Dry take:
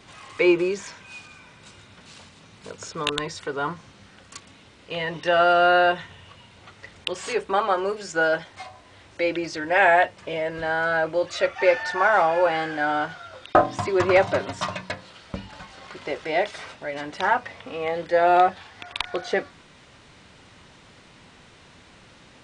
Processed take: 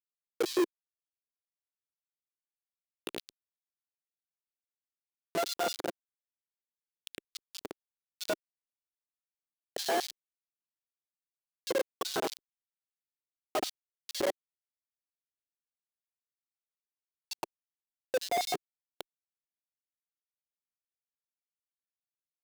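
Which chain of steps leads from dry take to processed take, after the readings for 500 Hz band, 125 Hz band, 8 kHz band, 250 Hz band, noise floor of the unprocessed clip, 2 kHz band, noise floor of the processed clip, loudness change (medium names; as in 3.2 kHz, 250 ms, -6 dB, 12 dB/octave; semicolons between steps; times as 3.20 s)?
-15.0 dB, -22.0 dB, -2.5 dB, -13.0 dB, -51 dBFS, -21.0 dB, under -85 dBFS, -12.5 dB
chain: expander on every frequency bin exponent 3; on a send: multi-tap echo 75/79/108/279 ms -6.5/-11.5/-5/-13.5 dB; on the sum: whistle 780 Hz -41 dBFS; Schmitt trigger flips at -20.5 dBFS; LFO high-pass square 4.4 Hz 370–4200 Hz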